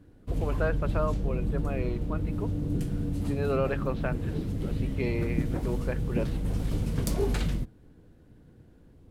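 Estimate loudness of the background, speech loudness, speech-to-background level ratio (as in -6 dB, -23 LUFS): -31.5 LUFS, -35.0 LUFS, -3.5 dB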